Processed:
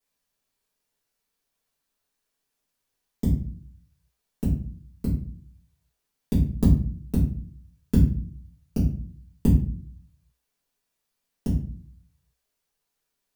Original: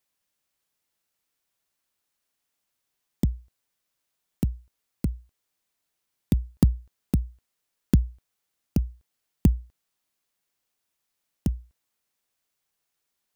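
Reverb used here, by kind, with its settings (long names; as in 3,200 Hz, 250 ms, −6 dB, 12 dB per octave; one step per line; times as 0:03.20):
rectangular room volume 41 cubic metres, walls mixed, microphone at 1.7 metres
level −9 dB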